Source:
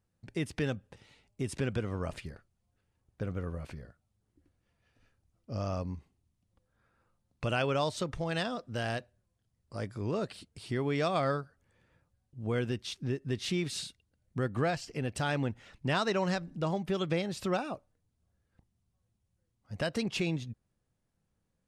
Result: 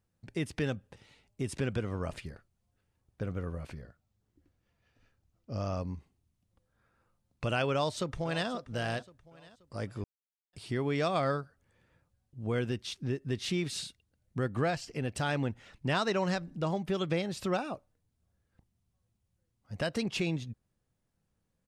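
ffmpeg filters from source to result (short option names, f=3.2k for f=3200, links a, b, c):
-filter_complex "[0:a]asettb=1/sr,asplit=3[a][b][c];[a]atrim=end=3.814[d];[b]atrim=start=3.81:end=5.78,asetpts=PTS-STARTPTS,afade=t=in:d=0.004:c=qsin,afade=t=out:st=1.966:d=0.004:c=qsin,equalizer=f=9.5k:w=3.1:g=-7[e];[c]atrim=start=5.776[f];[d][e]acrossfade=d=0.004:c1=hsin:c2=qsin[g];[g][f]acrossfade=d=0.004:c1=qsin:c2=hsin,asplit=2[h][i];[i]afade=t=in:st=7.72:d=0.01,afade=t=out:st=8.49:d=0.01,aecho=0:1:530|1060|1590|2120:0.16788|0.0671522|0.0268609|0.0107443[j];[h][j]amix=inputs=2:normalize=0,asplit=3[k][l][m];[k]atrim=end=10.04,asetpts=PTS-STARTPTS,afade=t=out:st=10.036:d=0.004:c=hsin[n];[l]atrim=start=10.04:end=10.53,asetpts=PTS-STARTPTS,volume=0[o];[m]atrim=start=10.53,asetpts=PTS-STARTPTS,afade=t=in:d=0.004:c=hsin[p];[n][o][p]concat=n=3:v=0:a=1"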